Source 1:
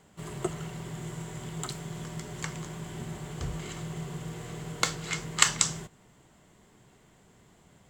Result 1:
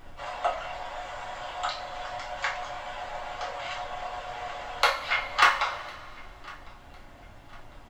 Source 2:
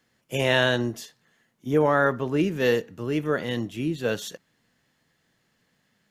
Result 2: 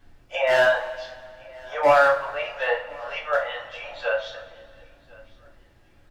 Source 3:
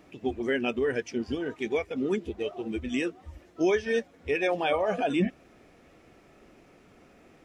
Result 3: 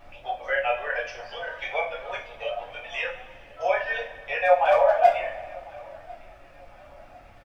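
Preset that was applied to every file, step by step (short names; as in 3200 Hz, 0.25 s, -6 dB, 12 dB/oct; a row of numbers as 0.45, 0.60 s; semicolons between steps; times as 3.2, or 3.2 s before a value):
octaver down 1 oct, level +1 dB; steep high-pass 560 Hz 72 dB/oct; treble ducked by the level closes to 2100 Hz, closed at -28.5 dBFS; reverb removal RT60 0.78 s; LPF 5100 Hz 24 dB/oct; tilt shelf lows +6 dB; hard clip -20.5 dBFS; added noise brown -60 dBFS; feedback echo 1.054 s, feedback 36%, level -24 dB; two-slope reverb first 0.34 s, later 2.2 s, from -18 dB, DRR -5 dB; normalise peaks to -6 dBFS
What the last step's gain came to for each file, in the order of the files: +8.0, +3.0, +4.5 dB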